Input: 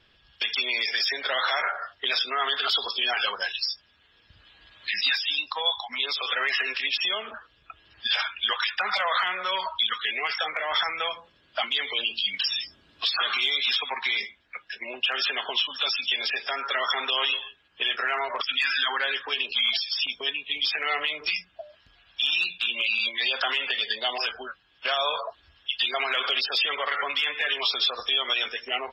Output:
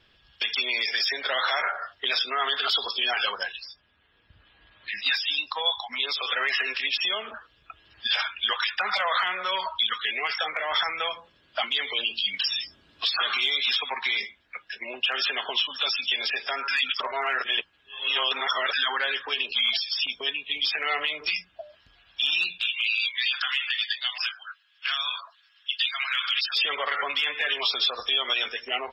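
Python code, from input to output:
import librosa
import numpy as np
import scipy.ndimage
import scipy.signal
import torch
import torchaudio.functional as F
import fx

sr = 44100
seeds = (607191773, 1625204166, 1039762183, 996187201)

y = fx.air_absorb(x, sr, metres=310.0, at=(3.43, 5.06))
y = fx.highpass(y, sr, hz=1300.0, slope=24, at=(22.61, 26.55), fade=0.02)
y = fx.edit(y, sr, fx.reverse_span(start_s=16.68, length_s=2.05), tone=tone)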